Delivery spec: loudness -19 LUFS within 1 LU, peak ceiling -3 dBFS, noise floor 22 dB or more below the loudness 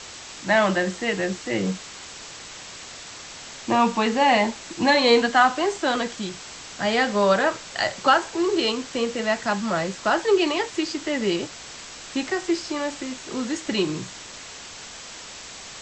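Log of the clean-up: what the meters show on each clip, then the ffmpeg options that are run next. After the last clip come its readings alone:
noise floor -40 dBFS; noise floor target -45 dBFS; loudness -23.0 LUFS; peak level -5.5 dBFS; loudness target -19.0 LUFS
-> -af "afftdn=nr=6:nf=-40"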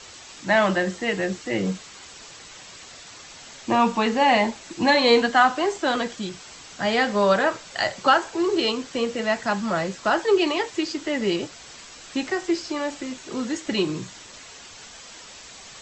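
noise floor -44 dBFS; noise floor target -45 dBFS
-> -af "afftdn=nr=6:nf=-44"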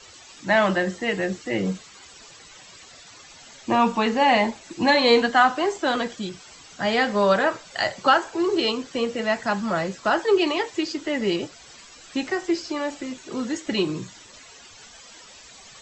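noise floor -47 dBFS; loudness -23.0 LUFS; peak level -6.0 dBFS; loudness target -19.0 LUFS
-> -af "volume=1.58,alimiter=limit=0.708:level=0:latency=1"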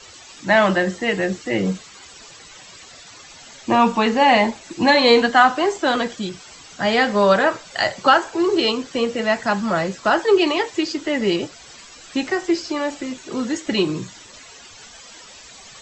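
loudness -19.0 LUFS; peak level -3.0 dBFS; noise floor -43 dBFS

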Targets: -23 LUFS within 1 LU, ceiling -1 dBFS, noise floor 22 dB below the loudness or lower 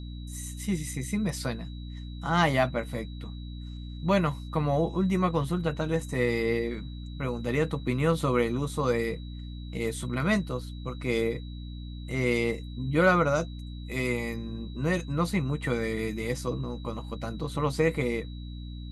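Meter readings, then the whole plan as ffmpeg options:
hum 60 Hz; highest harmonic 300 Hz; hum level -36 dBFS; steady tone 3.9 kHz; tone level -52 dBFS; loudness -29.0 LUFS; peak level -9.5 dBFS; loudness target -23.0 LUFS
-> -af "bandreject=f=60:t=h:w=4,bandreject=f=120:t=h:w=4,bandreject=f=180:t=h:w=4,bandreject=f=240:t=h:w=4,bandreject=f=300:t=h:w=4"
-af "bandreject=f=3900:w=30"
-af "volume=2"

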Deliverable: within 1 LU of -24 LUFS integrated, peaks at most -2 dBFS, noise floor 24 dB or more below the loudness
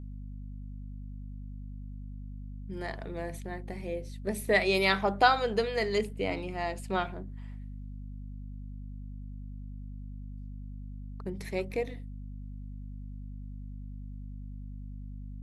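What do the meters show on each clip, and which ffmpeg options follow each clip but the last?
hum 50 Hz; highest harmonic 250 Hz; hum level -39 dBFS; loudness -30.5 LUFS; peak level -9.0 dBFS; loudness target -24.0 LUFS
-> -af "bandreject=f=50:t=h:w=4,bandreject=f=100:t=h:w=4,bandreject=f=150:t=h:w=4,bandreject=f=200:t=h:w=4,bandreject=f=250:t=h:w=4"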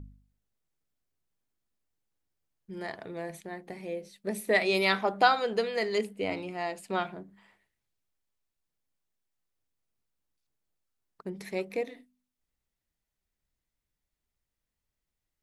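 hum not found; loudness -30.5 LUFS; peak level -9.5 dBFS; loudness target -24.0 LUFS
-> -af "volume=2.11"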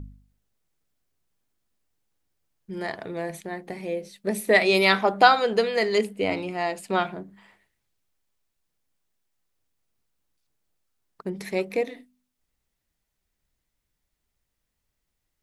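loudness -24.0 LUFS; peak level -3.0 dBFS; noise floor -81 dBFS

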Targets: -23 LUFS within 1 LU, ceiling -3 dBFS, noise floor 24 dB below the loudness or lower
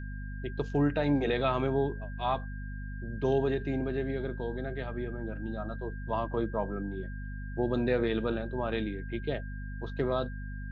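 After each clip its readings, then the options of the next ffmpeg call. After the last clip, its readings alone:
hum 50 Hz; highest harmonic 250 Hz; hum level -36 dBFS; steady tone 1.6 kHz; tone level -48 dBFS; loudness -32.5 LUFS; peak level -16.0 dBFS; loudness target -23.0 LUFS
-> -af "bandreject=f=50:t=h:w=4,bandreject=f=100:t=h:w=4,bandreject=f=150:t=h:w=4,bandreject=f=200:t=h:w=4,bandreject=f=250:t=h:w=4"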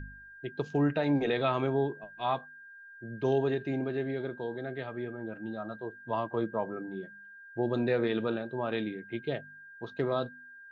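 hum not found; steady tone 1.6 kHz; tone level -48 dBFS
-> -af "bandreject=f=1600:w=30"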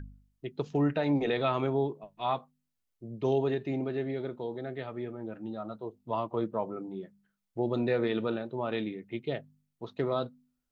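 steady tone not found; loudness -32.5 LUFS; peak level -16.5 dBFS; loudness target -23.0 LUFS
-> -af "volume=2.99"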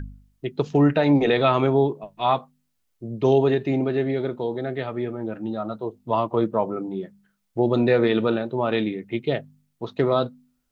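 loudness -23.0 LUFS; peak level -7.0 dBFS; noise floor -72 dBFS

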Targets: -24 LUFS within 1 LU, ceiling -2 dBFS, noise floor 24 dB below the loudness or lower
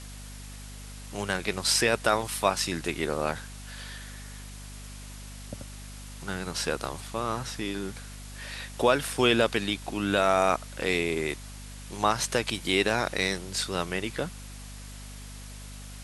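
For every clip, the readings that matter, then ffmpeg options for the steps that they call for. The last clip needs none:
hum 50 Hz; highest harmonic 250 Hz; hum level -41 dBFS; noise floor -42 dBFS; noise floor target -52 dBFS; loudness -27.5 LUFS; peak level -7.5 dBFS; loudness target -24.0 LUFS
-> -af "bandreject=f=50:t=h:w=6,bandreject=f=100:t=h:w=6,bandreject=f=150:t=h:w=6,bandreject=f=200:t=h:w=6,bandreject=f=250:t=h:w=6"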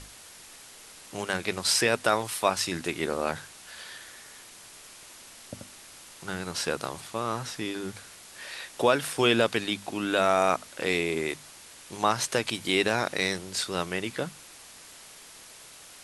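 hum not found; noise floor -49 dBFS; noise floor target -52 dBFS
-> -af "afftdn=nr=6:nf=-49"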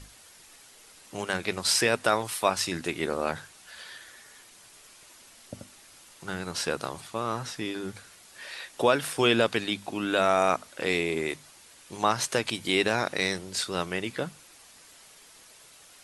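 noise floor -54 dBFS; loudness -27.5 LUFS; peak level -7.5 dBFS; loudness target -24.0 LUFS
-> -af "volume=1.5"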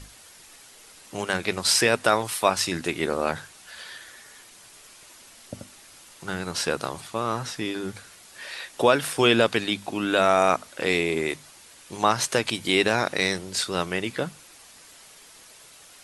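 loudness -24.0 LUFS; peak level -4.0 dBFS; noise floor -50 dBFS

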